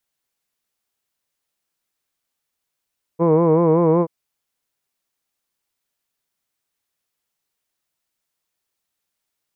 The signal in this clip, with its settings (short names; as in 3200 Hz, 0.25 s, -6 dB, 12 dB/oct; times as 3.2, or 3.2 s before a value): formant-synthesis vowel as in hood, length 0.88 s, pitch 162 Hz, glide +0.5 st